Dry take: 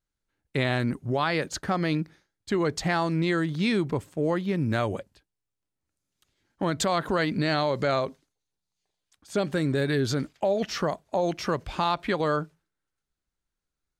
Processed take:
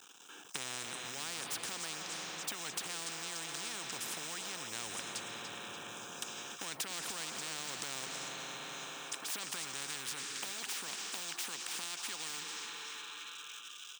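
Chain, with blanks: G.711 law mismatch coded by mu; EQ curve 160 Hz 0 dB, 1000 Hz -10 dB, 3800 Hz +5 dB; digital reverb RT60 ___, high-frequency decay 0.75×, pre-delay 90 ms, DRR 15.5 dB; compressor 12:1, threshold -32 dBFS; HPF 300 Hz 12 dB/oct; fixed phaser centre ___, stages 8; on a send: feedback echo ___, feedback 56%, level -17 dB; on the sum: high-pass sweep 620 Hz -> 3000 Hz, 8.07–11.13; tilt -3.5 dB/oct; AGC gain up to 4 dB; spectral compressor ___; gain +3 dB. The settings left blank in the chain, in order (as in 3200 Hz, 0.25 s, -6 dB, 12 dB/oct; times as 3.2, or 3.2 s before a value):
3.4 s, 3000 Hz, 0.291 s, 10:1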